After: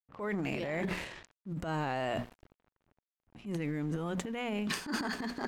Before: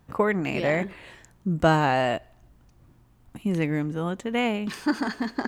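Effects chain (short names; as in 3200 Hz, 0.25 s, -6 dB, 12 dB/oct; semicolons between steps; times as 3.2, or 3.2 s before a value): notches 60/120/180/240 Hz; crossover distortion -51 dBFS; reverse; compressor 6:1, threshold -32 dBFS, peak gain reduction 16.5 dB; reverse; low-pass opened by the level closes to 1900 Hz, open at -37 dBFS; transient shaper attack -8 dB, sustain +11 dB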